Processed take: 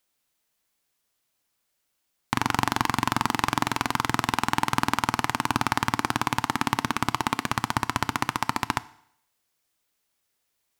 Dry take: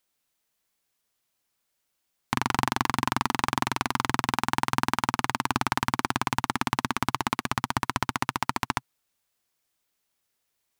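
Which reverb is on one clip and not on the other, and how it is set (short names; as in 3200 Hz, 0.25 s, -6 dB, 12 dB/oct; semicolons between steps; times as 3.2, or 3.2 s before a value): FDN reverb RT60 0.7 s, low-frequency decay 0.9×, high-frequency decay 1×, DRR 16 dB; gain +1.5 dB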